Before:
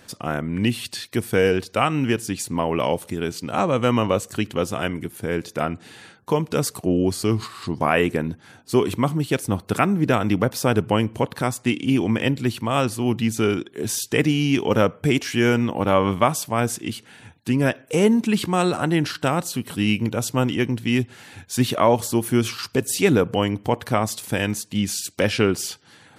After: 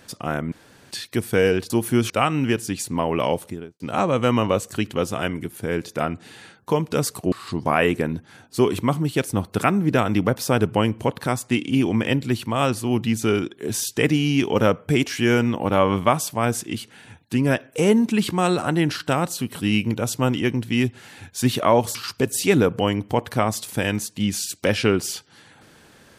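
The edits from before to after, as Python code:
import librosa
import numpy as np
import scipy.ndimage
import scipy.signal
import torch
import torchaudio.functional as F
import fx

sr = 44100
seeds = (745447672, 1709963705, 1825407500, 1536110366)

y = fx.studio_fade_out(x, sr, start_s=2.96, length_s=0.44)
y = fx.edit(y, sr, fx.room_tone_fill(start_s=0.52, length_s=0.39),
    fx.cut(start_s=6.92, length_s=0.55),
    fx.move(start_s=22.1, length_s=0.4, to_s=1.7), tone=tone)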